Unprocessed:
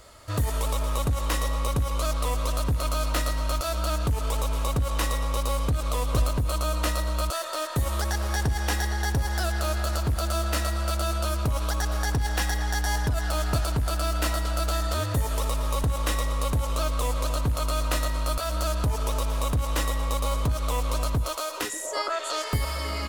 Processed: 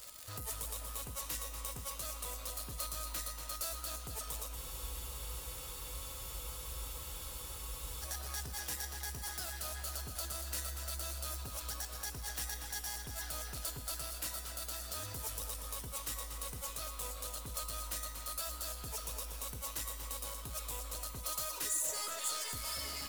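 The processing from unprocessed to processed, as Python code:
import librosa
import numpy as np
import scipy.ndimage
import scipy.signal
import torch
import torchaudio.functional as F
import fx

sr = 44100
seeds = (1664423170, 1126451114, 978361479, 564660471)

p1 = fx.dmg_crackle(x, sr, seeds[0], per_s=240.0, level_db=-33.0)
p2 = fx.dereverb_blind(p1, sr, rt60_s=0.72)
p3 = fx.over_compress(p2, sr, threshold_db=-33.0, ratio=-1.0)
p4 = p2 + (p3 * librosa.db_to_amplitude(0.0))
p5 = np.clip(p4, -10.0 ** (-23.0 / 20.0), 10.0 ** (-23.0 / 20.0))
p6 = F.preemphasis(torch.from_numpy(p5), 0.8).numpy()
p7 = fx.comb_fb(p6, sr, f0_hz=250.0, decay_s=1.0, harmonics='all', damping=0.0, mix_pct=80)
p8 = fx.echo_feedback(p7, sr, ms=238, feedback_pct=55, wet_db=-9)
p9 = fx.spec_freeze(p8, sr, seeds[1], at_s=4.58, hold_s=3.45)
y = p9 * librosa.db_to_amplitude(6.5)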